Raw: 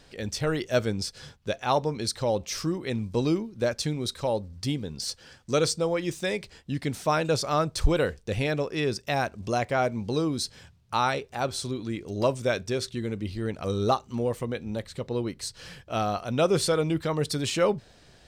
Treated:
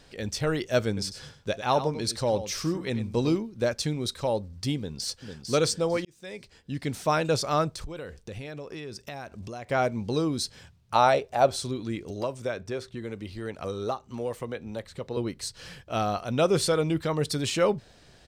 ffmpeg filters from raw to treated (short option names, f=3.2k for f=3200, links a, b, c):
-filter_complex "[0:a]asettb=1/sr,asplit=3[a][b][c];[a]atrim=end=0.874[d];[b]atrim=start=0.87:end=3.36,asetpts=PTS-STARTPTS,afade=t=in:d=0.004:c=qsin,afade=t=out:st=2.486:d=0.004:c=qsin,aecho=1:1:97:0.266,atrim=end_sample=109809[e];[c]atrim=start=3.356[f];[d][e]acrossfade=d=0.004:c1=hsin:c2=qsin[g];[g][f]acrossfade=d=0.004:c1=qsin:c2=hsin,asplit=2[h][i];[i]afade=t=in:st=4.77:d=0.01,afade=t=out:st=5.52:d=0.01,aecho=0:1:450|900|1350|1800:0.473151|0.141945|0.0425836|0.0127751[j];[h][j]amix=inputs=2:normalize=0,asettb=1/sr,asplit=3[k][l][m];[k]atrim=end=7.754[n];[l]atrim=start=7.75:end=9.7,asetpts=PTS-STARTPTS,afade=t=in:d=0.004:c=qsin,afade=t=out:st=1.946:d=0.004:c=qsin,acompressor=threshold=-35dB:ratio=6:attack=3.2:release=140:knee=1:detection=peak[o];[m]atrim=start=9.696[p];[n][o]acrossfade=d=0.004:c1=hsin:c2=qsin[q];[q][p]acrossfade=d=0.004:c1=qsin:c2=hsin,asettb=1/sr,asplit=3[r][s][t];[r]atrim=end=10.954[u];[s]atrim=start=10.95:end=11.56,asetpts=PTS-STARTPTS,afade=t=in:d=0.004:c=qsin,afade=t=out:st=0.606:d=0.004:c=qsin,equalizer=f=640:t=o:w=0.67:g=12[v];[t]atrim=start=11.556[w];[u][v]acrossfade=d=0.004:c1=hsin:c2=qsin[x];[x][w]acrossfade=d=0.004:c1=qsin:c2=hsin,asettb=1/sr,asplit=3[y][z][aa];[y]atrim=end=12.104[ab];[z]atrim=start=12.1:end=15.17,asetpts=PTS-STARTPTS,afade=t=in:d=0.004:c=qsin,afade=t=out:st=3.066:d=0.004:c=qsin,acrossover=split=420|2000[ac][ad][ae];[ac]acompressor=threshold=-37dB:ratio=4[af];[ad]acompressor=threshold=-29dB:ratio=4[ag];[ae]acompressor=threshold=-48dB:ratio=4[ah];[af][ag][ah]amix=inputs=3:normalize=0[ai];[aa]atrim=start=15.166[aj];[ab][ai]acrossfade=d=0.004:c1=hsin:c2=qsin[ak];[ak][aj]acrossfade=d=0.004:c1=qsin:c2=hsin,asplit=2[al][am];[al]atrim=end=6.05,asetpts=PTS-STARTPTS,afade=t=out:st=6.046:d=0.004:c=hsin[an];[am]atrim=start=6.05,asetpts=PTS-STARTPTS,afade=t=in:d=0.95[ao];[an][ao]concat=n=2:v=0:a=1"